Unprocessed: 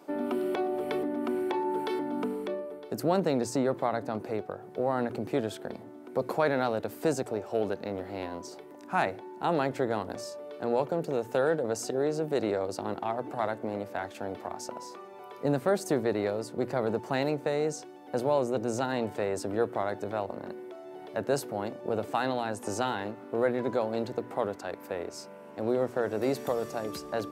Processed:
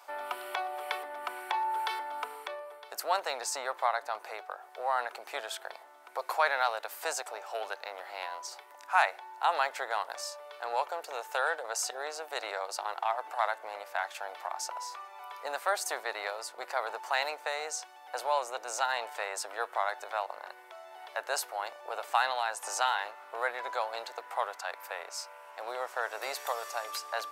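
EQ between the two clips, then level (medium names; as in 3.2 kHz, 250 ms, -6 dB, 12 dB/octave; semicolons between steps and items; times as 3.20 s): high-pass 800 Hz 24 dB/octave; +5.0 dB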